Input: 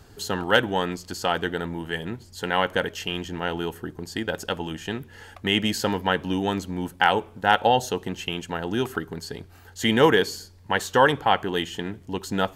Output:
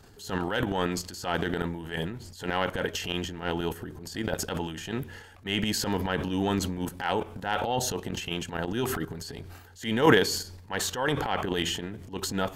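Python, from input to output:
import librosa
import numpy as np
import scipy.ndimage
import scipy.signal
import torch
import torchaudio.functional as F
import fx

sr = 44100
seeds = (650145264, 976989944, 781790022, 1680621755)

y = fx.level_steps(x, sr, step_db=14)
y = fx.transient(y, sr, attack_db=-10, sustain_db=10)
y = y * 10.0 ** (2.5 / 20.0)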